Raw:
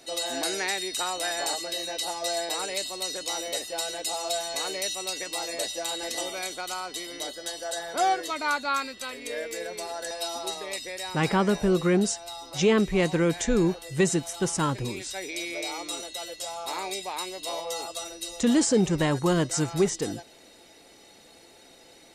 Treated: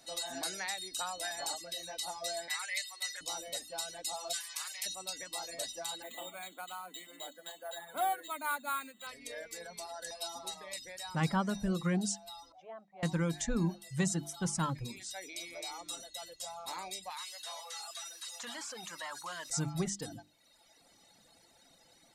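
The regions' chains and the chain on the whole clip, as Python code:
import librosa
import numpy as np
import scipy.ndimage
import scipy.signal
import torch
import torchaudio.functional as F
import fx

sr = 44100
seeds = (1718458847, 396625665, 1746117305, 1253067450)

y = fx.chain(x, sr, fx.highpass(hz=1100.0, slope=12),
    fx.peak_eq(hz=2000.0, db=14.5, octaves=0.54), at=(2.48, 3.21))
y = fx.spec_clip(y, sr, under_db=17, at=(4.32, 4.85), fade=0.02)
y = fx.highpass(y, sr, hz=1200.0, slope=12, at=(4.32, 4.85), fade=0.02)
y = fx.chain(y, sr, fx.cheby1_bandpass(low_hz=180.0, high_hz=3900.0, order=5),
    fx.resample_bad(factor=4, down='filtered', up='hold'), at=(6.02, 9.07))
y = fx.chain(y, sr, fx.bandpass_q(hz=700.0, q=6.8),
    fx.tilt_eq(slope=2.0), at=(12.52, 13.03))
y = fx.chain(y, sr, fx.delta_mod(bps=64000, step_db=-42.0),
    fx.highpass(hz=1100.0, slope=12),
    fx.env_flatten(amount_pct=50), at=(17.1, 19.5))
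y = fx.graphic_eq_15(y, sr, hz=(160, 400, 2500), db=(5, -11, -5))
y = fx.dereverb_blind(y, sr, rt60_s=1.1)
y = fx.hum_notches(y, sr, base_hz=50, count=7)
y = y * 10.0 ** (-6.0 / 20.0)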